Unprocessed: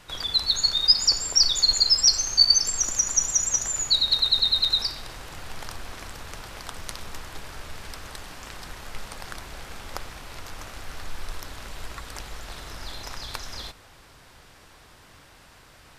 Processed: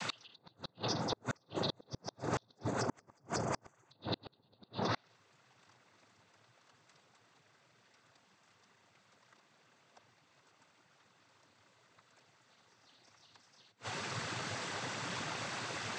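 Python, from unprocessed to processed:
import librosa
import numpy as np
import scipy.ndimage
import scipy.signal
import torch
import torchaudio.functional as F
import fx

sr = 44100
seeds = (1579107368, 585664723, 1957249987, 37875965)

y = fx.noise_vocoder(x, sr, seeds[0], bands=16)
y = fx.env_lowpass_down(y, sr, base_hz=630.0, full_db=-20.5)
y = fx.gate_flip(y, sr, shuts_db=-36.0, range_db=-38)
y = y * librosa.db_to_amplitude(13.0)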